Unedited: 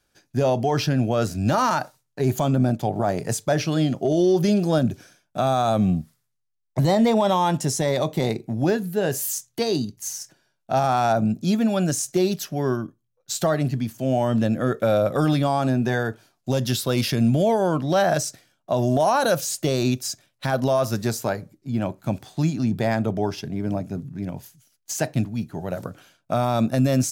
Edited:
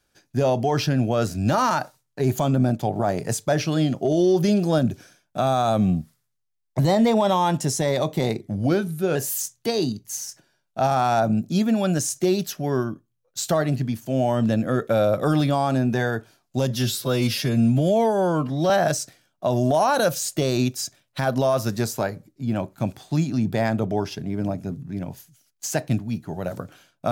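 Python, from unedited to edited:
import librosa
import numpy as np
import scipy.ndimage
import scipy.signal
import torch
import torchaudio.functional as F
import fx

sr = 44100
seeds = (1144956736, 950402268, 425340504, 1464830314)

y = fx.edit(x, sr, fx.speed_span(start_s=8.41, length_s=0.67, speed=0.9),
    fx.stretch_span(start_s=16.63, length_s=1.33, factor=1.5), tone=tone)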